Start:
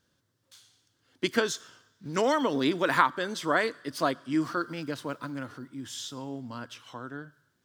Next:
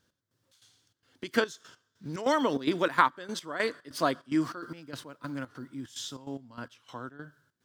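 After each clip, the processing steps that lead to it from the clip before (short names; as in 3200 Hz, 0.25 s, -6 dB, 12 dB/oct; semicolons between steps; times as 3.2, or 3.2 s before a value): step gate "x..xx.xxx.xx.x.." 146 bpm -12 dB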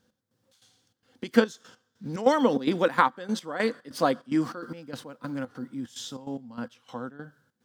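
small resonant body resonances 220/500/770 Hz, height 11 dB, ringing for 50 ms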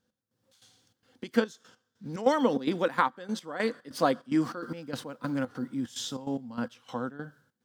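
AGC gain up to 11 dB; gain -8.5 dB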